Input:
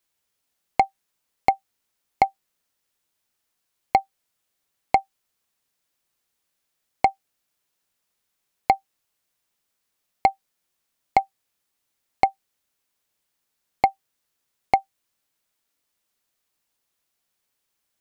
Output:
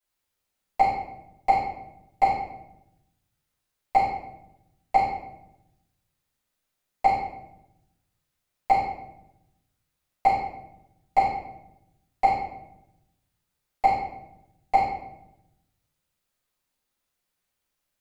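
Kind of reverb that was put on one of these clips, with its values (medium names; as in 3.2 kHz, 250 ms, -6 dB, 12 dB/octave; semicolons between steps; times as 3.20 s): simulated room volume 260 m³, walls mixed, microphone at 6.7 m; trim -17 dB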